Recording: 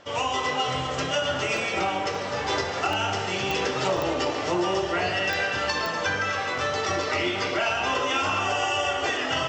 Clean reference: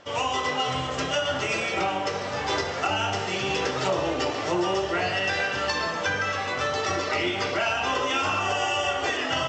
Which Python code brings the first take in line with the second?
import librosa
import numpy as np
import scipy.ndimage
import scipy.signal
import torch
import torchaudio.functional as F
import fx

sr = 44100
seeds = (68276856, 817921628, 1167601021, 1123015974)

y = fx.fix_declick_ar(x, sr, threshold=10.0)
y = fx.fix_interpolate(y, sr, at_s=(1.57, 2.15, 2.93, 3.97, 6.58, 7.03), length_ms=1.8)
y = fx.fix_echo_inverse(y, sr, delay_ms=251, level_db=-11.5)